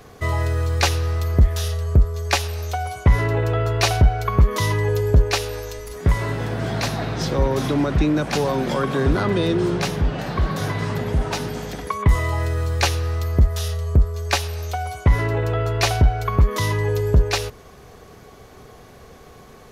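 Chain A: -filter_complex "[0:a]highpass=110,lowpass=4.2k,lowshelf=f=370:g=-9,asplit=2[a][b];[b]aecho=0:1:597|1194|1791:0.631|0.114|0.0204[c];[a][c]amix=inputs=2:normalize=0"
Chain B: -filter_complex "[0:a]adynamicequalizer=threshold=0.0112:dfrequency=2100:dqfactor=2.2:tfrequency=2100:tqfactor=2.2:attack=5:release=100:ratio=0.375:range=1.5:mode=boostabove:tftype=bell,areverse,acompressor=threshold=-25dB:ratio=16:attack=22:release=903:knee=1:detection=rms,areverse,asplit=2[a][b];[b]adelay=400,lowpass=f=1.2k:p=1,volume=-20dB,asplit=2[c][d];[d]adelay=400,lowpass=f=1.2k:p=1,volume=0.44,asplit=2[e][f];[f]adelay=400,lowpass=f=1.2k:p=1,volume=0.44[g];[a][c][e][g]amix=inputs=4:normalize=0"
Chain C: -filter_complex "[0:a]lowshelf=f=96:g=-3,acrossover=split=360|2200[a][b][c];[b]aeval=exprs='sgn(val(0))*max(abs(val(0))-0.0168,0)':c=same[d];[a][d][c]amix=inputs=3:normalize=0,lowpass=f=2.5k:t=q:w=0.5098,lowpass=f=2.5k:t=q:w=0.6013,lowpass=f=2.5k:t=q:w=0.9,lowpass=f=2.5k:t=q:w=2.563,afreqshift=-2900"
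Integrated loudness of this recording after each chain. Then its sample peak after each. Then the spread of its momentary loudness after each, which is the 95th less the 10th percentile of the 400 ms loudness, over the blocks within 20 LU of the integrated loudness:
-26.0, -32.0, -18.5 LUFS; -6.5, -15.5, -5.5 dBFS; 8, 10, 9 LU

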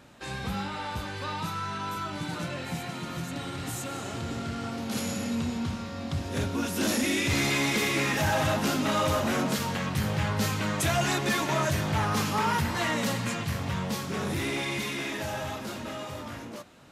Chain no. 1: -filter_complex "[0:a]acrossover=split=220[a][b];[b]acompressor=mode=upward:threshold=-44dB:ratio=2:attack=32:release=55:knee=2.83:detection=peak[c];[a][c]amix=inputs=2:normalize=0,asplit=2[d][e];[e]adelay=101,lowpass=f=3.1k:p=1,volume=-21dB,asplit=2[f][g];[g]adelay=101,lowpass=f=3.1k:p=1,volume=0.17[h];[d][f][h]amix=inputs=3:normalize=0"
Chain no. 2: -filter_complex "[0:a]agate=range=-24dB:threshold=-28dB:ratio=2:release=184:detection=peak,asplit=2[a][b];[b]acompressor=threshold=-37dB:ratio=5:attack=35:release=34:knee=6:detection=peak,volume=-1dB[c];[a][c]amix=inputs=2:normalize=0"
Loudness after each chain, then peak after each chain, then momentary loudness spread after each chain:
-29.0, -26.5 LUFS; -13.0, -16.5 dBFS; 10, 11 LU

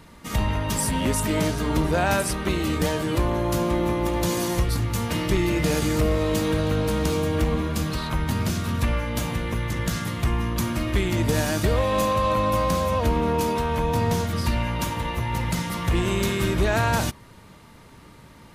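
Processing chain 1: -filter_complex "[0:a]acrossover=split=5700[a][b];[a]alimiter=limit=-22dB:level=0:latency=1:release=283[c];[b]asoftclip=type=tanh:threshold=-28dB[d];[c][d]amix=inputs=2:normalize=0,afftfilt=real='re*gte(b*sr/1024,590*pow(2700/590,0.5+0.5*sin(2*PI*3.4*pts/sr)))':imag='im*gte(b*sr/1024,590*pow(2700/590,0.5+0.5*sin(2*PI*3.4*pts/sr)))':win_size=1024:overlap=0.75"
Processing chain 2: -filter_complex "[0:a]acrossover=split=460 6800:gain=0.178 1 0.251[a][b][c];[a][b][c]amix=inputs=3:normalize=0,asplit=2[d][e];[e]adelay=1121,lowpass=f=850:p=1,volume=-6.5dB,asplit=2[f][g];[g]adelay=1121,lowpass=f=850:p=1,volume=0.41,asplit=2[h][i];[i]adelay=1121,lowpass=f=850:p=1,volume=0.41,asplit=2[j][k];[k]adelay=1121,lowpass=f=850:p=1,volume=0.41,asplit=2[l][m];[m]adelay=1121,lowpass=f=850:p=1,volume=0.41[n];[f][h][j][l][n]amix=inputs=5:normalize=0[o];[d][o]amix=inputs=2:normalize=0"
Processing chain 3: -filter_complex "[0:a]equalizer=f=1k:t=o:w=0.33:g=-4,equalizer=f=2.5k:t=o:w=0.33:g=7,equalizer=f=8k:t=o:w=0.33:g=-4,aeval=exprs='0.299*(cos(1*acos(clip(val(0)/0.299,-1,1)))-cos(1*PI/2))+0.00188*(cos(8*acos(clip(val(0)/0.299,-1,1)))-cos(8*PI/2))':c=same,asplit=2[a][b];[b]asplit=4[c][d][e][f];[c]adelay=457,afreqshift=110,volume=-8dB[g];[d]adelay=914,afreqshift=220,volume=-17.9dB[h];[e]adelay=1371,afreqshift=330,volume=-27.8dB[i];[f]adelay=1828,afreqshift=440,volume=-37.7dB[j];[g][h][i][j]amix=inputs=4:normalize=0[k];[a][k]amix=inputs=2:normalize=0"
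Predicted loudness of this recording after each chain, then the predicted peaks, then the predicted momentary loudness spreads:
-36.0, -28.5, -23.5 LUFS; -21.0, -12.5, -10.0 dBFS; 7, 8, 4 LU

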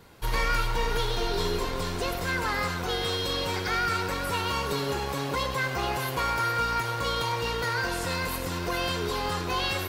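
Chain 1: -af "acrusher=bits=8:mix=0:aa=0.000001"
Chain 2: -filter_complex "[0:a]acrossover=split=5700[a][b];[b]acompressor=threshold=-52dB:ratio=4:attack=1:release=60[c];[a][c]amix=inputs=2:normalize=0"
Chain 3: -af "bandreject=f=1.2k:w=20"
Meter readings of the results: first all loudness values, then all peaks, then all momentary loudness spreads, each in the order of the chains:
-28.5, -28.5, -28.5 LUFS; -16.5, -16.5, -16.0 dBFS; 4, 4, 4 LU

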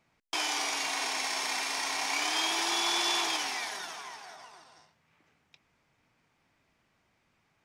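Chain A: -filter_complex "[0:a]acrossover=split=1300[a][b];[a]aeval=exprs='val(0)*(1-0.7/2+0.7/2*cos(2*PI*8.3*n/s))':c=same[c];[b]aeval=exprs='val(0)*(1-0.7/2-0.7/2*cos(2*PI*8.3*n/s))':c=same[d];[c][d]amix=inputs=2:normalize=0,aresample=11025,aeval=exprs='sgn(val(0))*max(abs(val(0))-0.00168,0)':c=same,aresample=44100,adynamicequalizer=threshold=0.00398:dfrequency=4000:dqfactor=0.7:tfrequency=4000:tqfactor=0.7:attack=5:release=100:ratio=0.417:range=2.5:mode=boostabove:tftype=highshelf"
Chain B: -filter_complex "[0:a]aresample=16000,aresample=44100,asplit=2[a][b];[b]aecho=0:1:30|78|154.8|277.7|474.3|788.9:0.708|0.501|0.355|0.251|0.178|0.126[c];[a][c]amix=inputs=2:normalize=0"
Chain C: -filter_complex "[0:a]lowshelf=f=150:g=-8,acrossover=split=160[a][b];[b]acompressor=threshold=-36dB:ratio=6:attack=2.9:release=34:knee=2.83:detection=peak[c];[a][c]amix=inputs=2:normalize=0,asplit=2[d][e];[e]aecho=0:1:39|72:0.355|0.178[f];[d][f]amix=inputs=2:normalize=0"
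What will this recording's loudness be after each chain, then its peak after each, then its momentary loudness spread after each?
-33.0, -27.0, -36.0 LUFS; -19.0, -14.0, -25.0 dBFS; 12, 13, 10 LU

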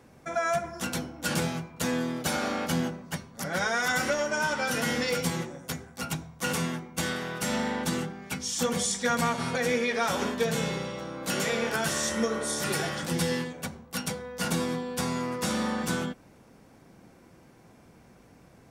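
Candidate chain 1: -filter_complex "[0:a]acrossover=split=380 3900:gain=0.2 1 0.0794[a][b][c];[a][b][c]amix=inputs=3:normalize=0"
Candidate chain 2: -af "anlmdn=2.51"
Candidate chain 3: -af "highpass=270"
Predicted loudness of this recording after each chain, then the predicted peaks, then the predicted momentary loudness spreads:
-32.5, -29.5, -30.5 LUFS; -17.0, -14.0, -15.0 dBFS; 11, 9, 9 LU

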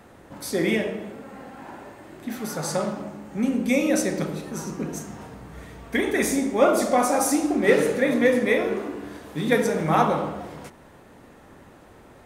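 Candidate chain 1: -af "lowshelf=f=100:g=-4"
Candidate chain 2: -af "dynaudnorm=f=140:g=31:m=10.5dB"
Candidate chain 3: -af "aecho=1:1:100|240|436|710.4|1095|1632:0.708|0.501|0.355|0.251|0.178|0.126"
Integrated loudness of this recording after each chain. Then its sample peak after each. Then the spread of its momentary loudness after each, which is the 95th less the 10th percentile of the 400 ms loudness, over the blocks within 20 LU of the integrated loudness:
-23.5, -18.5, -21.0 LUFS; -6.0, -1.0, -3.0 dBFS; 21, 20, 18 LU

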